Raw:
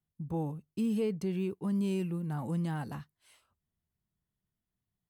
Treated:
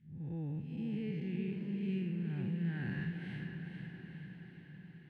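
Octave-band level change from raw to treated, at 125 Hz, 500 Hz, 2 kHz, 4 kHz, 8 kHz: −1.5 dB, −10.5 dB, +3.0 dB, −4.0 dB, below −20 dB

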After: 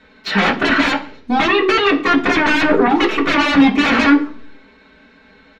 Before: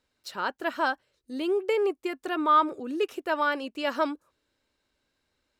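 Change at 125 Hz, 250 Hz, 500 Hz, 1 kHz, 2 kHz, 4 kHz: can't be measured, +18.5 dB, +9.5 dB, +9.5 dB, +17.0 dB, +18.0 dB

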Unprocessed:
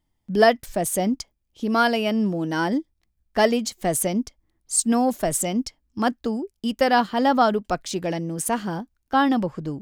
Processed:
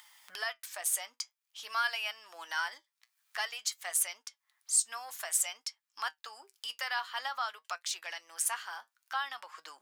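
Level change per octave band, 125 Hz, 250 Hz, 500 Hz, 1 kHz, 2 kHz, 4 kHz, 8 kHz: below −40 dB, below −40 dB, −28.0 dB, −15.0 dB, −7.5 dB, −6.0 dB, −4.0 dB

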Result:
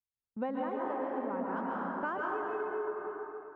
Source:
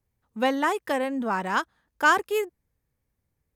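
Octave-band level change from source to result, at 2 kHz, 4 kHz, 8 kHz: −15.0 dB, below −25 dB, below −40 dB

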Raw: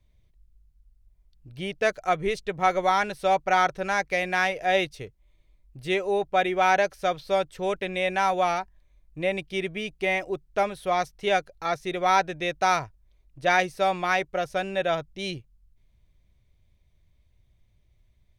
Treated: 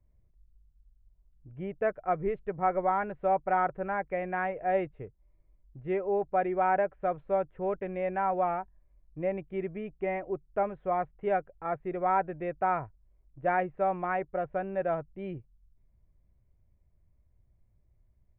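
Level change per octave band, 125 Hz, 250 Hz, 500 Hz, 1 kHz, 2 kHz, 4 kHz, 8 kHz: −3.0 dB, −3.0 dB, −4.0 dB, −5.0 dB, −11.5 dB, below −25 dB, below −35 dB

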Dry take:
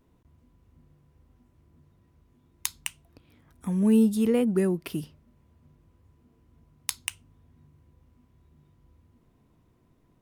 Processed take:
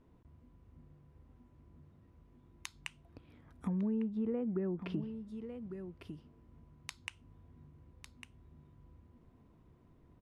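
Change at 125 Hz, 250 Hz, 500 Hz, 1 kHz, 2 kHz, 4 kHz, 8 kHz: −8.5, −11.5, −12.0, −9.5, −9.0, −12.5, −19.5 decibels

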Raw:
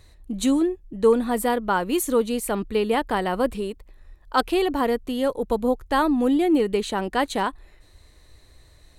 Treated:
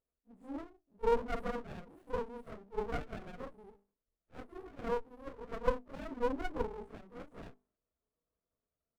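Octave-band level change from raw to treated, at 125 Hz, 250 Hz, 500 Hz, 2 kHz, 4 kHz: −11.5, −22.5, −15.0, −17.5, −23.5 decibels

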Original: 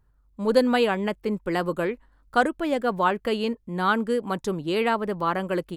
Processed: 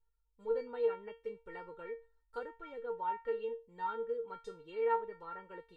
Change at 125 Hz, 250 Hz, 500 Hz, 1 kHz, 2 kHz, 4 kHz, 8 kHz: below −25 dB, −30.0 dB, −12.0 dB, −13.5 dB, −22.0 dB, below −25 dB, below −25 dB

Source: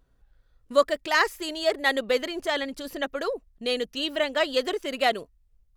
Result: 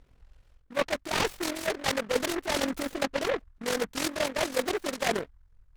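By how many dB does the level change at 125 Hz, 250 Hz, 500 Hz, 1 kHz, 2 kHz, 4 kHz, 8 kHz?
can't be measured, 0.0 dB, −4.5 dB, −4.5 dB, −5.0 dB, −4.0 dB, +6.5 dB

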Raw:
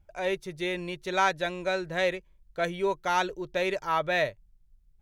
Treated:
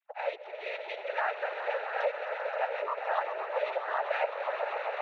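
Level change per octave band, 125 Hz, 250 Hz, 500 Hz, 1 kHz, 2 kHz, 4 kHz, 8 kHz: below −40 dB, below −25 dB, −2.5 dB, −2.5 dB, −4.0 dB, −10.0 dB, below −20 dB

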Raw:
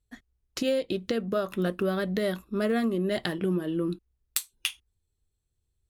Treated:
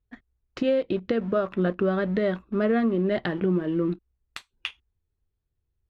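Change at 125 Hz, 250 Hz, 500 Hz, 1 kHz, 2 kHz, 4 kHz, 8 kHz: +3.5 dB, +3.5 dB, +3.5 dB, +3.5 dB, +1.5 dB, −4.5 dB, below −15 dB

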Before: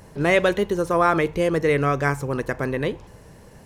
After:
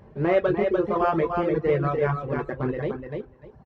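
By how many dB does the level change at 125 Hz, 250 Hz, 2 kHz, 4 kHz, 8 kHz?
−2.0 dB, −2.0 dB, −9.0 dB, below −10 dB, below −25 dB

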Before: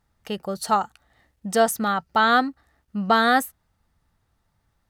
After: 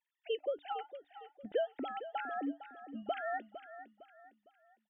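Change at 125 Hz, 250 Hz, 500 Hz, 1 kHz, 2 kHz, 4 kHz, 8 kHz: can't be measured, −17.0 dB, −12.0 dB, −19.0 dB, −21.5 dB, −20.0 dB, below −40 dB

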